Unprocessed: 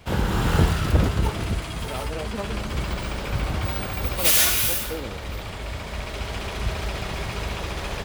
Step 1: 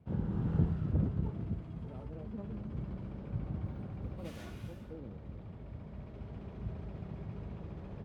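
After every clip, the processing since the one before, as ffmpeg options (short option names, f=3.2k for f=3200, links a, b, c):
-af "bandpass=f=160:t=q:w=1.2:csg=0,volume=-6.5dB"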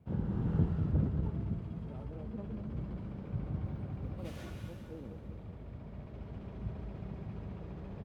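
-af "aecho=1:1:194|388|582|776|970|1164:0.335|0.178|0.0941|0.0499|0.0264|0.014"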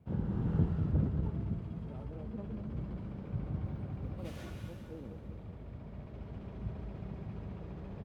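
-af anull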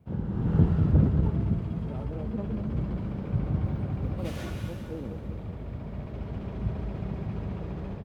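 -af "dynaudnorm=f=330:g=3:m=7dB,volume=2.5dB"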